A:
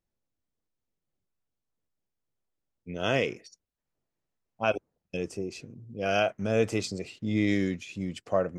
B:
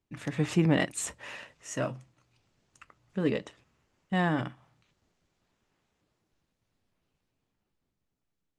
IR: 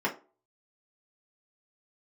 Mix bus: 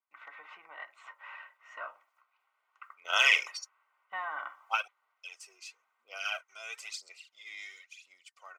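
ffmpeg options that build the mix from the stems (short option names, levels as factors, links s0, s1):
-filter_complex "[0:a]aphaser=in_gain=1:out_gain=1:delay=2.9:decay=0.59:speed=1:type=sinusoidal,adelay=100,volume=1.19[s0];[1:a]acompressor=threshold=0.0316:ratio=6,lowpass=1400,aemphasis=mode=reproduction:type=bsi,volume=1.33,asplit=3[s1][s2][s3];[s2]volume=0.178[s4];[s3]apad=whole_len=383214[s5];[s0][s5]sidechaingate=range=0.224:threshold=0.00178:ratio=16:detection=peak[s6];[2:a]atrim=start_sample=2205[s7];[s4][s7]afir=irnorm=-1:irlink=0[s8];[s6][s1][s8]amix=inputs=3:normalize=0,highpass=f=1100:w=0.5412,highpass=f=1100:w=1.3066,dynaudnorm=f=330:g=13:m=2.24,asuperstop=centerf=1700:order=20:qfactor=7.4"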